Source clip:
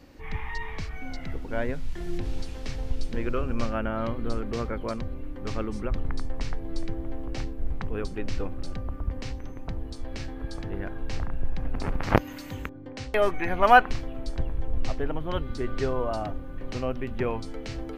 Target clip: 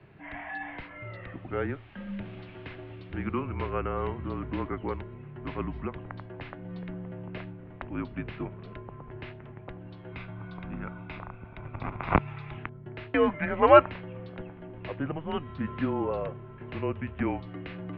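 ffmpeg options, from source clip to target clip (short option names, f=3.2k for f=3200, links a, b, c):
-filter_complex "[0:a]asettb=1/sr,asplit=3[a][b][c];[a]atrim=end=10.124[d];[b]atrim=start=10.12:end=12.58,asetpts=PTS-STARTPTS,afade=t=in:d=0.004:c=qsin,afade=t=out:st=2.456:d=0.004:c=qsin,aecho=1:1:0.8:0.48,atrim=end_sample=108486[e];[c]atrim=start=12.576[f];[d][e]acrossfade=d=0.004:c1=hsin:c2=qsin[g];[g][f]acrossfade=d=0.004:c1=qsin:c2=hsin,highpass=f=210:t=q:w=0.5412,highpass=f=210:t=q:w=1.307,lowpass=f=3.2k:t=q:w=0.5176,lowpass=f=3.2k:t=q:w=0.7071,lowpass=f=3.2k:t=q:w=1.932,afreqshift=-150"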